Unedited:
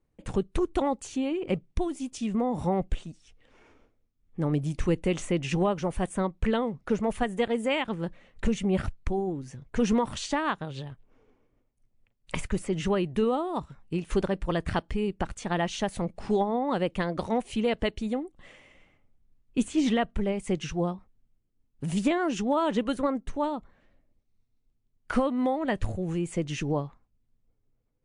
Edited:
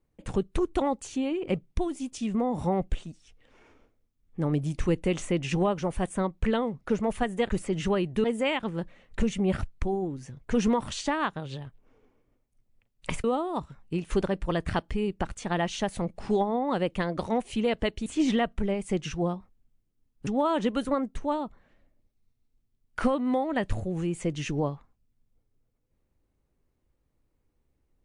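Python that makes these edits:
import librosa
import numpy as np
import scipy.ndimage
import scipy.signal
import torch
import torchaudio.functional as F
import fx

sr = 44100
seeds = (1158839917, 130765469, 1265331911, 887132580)

y = fx.edit(x, sr, fx.move(start_s=12.49, length_s=0.75, to_s=7.49),
    fx.cut(start_s=18.06, length_s=1.58),
    fx.cut(start_s=21.85, length_s=0.54), tone=tone)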